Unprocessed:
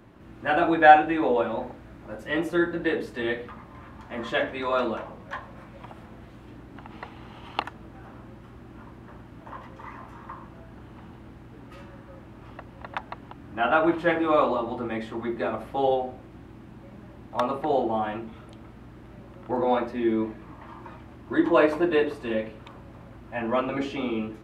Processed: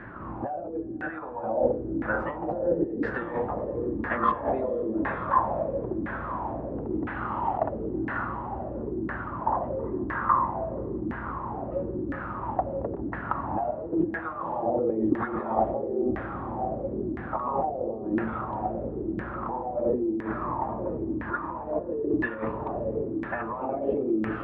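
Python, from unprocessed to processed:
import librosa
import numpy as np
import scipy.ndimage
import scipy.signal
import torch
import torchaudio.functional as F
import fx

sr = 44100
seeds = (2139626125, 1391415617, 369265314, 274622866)

y = fx.over_compress(x, sr, threshold_db=-36.0, ratio=-1.0)
y = fx.bandpass_edges(y, sr, low_hz=200.0, high_hz=4400.0, at=(23.02, 23.92))
y = fx.echo_diffused(y, sr, ms=545, feedback_pct=57, wet_db=-7.5)
y = fx.filter_lfo_lowpass(y, sr, shape='saw_down', hz=0.99, low_hz=290.0, high_hz=1800.0, q=6.3)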